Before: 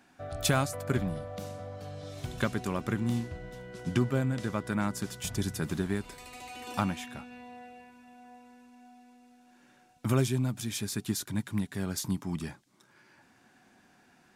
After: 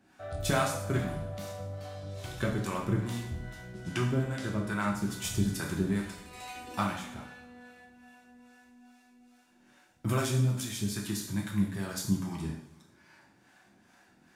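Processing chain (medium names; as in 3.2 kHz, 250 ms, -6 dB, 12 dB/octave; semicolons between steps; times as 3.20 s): harmonic tremolo 2.4 Hz, depth 70%, crossover 500 Hz; two-slope reverb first 0.64 s, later 1.8 s, DRR -1 dB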